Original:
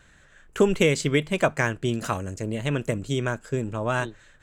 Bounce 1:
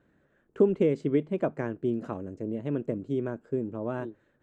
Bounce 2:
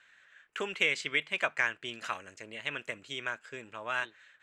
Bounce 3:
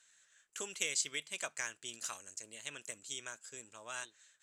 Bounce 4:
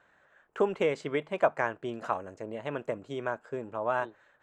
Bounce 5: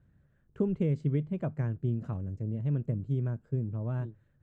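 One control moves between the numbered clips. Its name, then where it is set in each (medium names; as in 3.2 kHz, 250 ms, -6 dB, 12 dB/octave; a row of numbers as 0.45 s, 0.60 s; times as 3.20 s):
band-pass filter, frequency: 310 Hz, 2.3 kHz, 7.1 kHz, 810 Hz, 120 Hz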